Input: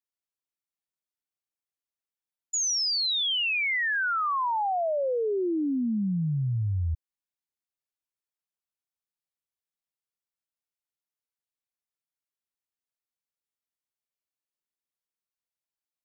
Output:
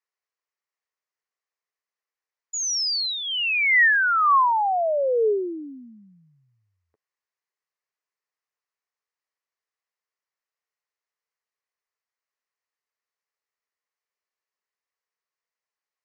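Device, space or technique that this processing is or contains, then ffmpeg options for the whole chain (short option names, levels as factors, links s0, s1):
phone speaker on a table: -af "highpass=f=430:w=0.5412,highpass=f=430:w=1.3066,equalizer=f=430:t=q:w=4:g=7,equalizer=f=1100:t=q:w=4:g=7,equalizer=f=1900:t=q:w=4:g=8,equalizer=f=3500:t=q:w=4:g=-8,lowpass=f=6400:w=0.5412,lowpass=f=6400:w=1.3066,volume=1.5"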